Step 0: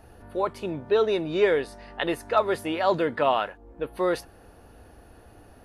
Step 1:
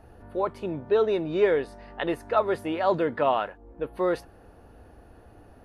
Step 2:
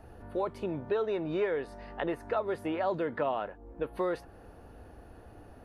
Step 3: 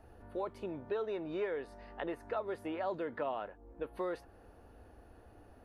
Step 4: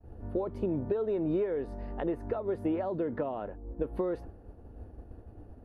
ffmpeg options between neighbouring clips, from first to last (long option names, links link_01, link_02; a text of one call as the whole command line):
ffmpeg -i in.wav -af "highshelf=frequency=2500:gain=-9" out.wav
ffmpeg -i in.wav -filter_complex "[0:a]acrossover=split=710|2200[link_01][link_02][link_03];[link_01]acompressor=threshold=-31dB:ratio=4[link_04];[link_02]acompressor=threshold=-37dB:ratio=4[link_05];[link_03]acompressor=threshold=-54dB:ratio=4[link_06];[link_04][link_05][link_06]amix=inputs=3:normalize=0" out.wav
ffmpeg -i in.wav -af "equalizer=frequency=150:width=2.4:gain=-5.5,volume=-6dB" out.wav
ffmpeg -i in.wav -af "agate=range=-33dB:threshold=-51dB:ratio=3:detection=peak,acompressor=threshold=-38dB:ratio=6,tiltshelf=frequency=680:gain=10,volume=7dB" out.wav